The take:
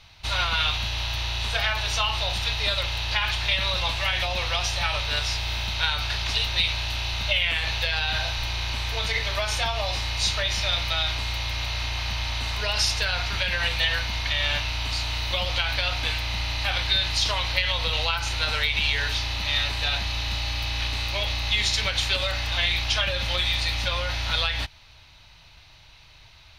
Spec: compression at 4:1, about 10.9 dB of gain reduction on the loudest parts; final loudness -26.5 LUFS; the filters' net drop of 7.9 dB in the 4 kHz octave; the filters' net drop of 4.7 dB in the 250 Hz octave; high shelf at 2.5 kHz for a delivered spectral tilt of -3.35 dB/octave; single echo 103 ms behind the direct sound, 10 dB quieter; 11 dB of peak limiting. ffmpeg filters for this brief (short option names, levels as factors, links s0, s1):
-af "equalizer=f=250:t=o:g=-7.5,highshelf=f=2500:g=-4,equalizer=f=4000:t=o:g=-6.5,acompressor=threshold=0.0141:ratio=4,alimiter=level_in=2.82:limit=0.0631:level=0:latency=1,volume=0.355,aecho=1:1:103:0.316,volume=5.31"